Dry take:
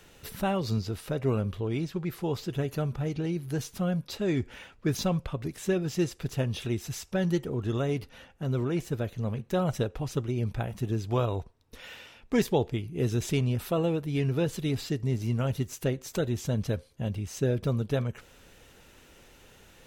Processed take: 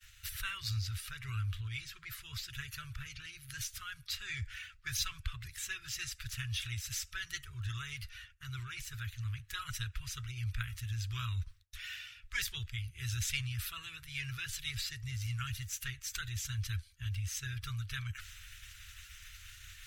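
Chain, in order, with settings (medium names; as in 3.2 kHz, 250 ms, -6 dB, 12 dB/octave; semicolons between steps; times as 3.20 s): coarse spectral quantiser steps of 15 dB; expander -51 dBFS; reverse; upward compressor, threshold -42 dBFS; reverse; inverse Chebyshev band-stop 170–840 Hz, stop band 40 dB; trim +2 dB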